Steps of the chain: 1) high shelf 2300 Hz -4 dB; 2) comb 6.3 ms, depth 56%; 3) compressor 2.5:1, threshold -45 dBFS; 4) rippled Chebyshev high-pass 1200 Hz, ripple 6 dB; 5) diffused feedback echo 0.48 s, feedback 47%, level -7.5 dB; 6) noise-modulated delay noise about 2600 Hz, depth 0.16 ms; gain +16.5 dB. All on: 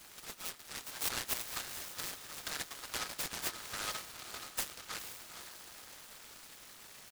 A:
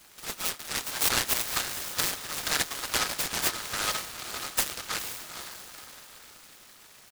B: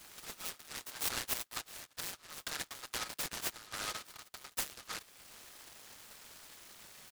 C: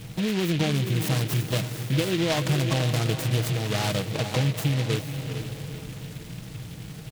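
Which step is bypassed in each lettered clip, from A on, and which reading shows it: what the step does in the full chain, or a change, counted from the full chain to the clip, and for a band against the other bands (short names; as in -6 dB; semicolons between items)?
3, mean gain reduction 7.5 dB; 5, momentary loudness spread change +1 LU; 4, 125 Hz band +25.0 dB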